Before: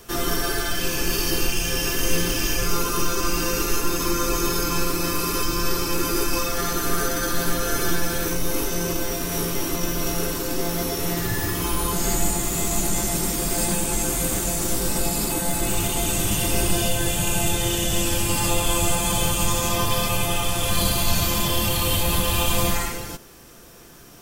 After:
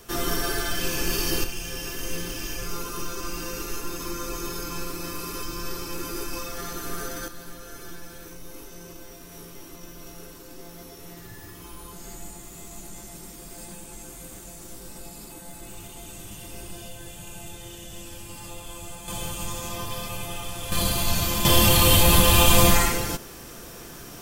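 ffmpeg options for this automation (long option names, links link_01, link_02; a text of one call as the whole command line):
ffmpeg -i in.wav -af "asetnsamples=nb_out_samples=441:pad=0,asendcmd='1.44 volume volume -9.5dB;7.28 volume volume -18dB;19.08 volume volume -10.5dB;20.72 volume volume -3dB;21.45 volume volume 5dB',volume=-2.5dB" out.wav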